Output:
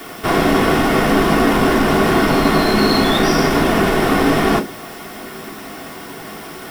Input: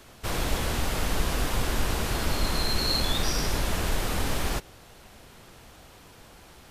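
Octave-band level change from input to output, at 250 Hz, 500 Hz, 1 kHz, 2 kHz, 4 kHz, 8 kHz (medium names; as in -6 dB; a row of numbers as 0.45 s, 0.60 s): +20.0 dB, +18.5 dB, +17.0 dB, +14.5 dB, +7.5 dB, +4.5 dB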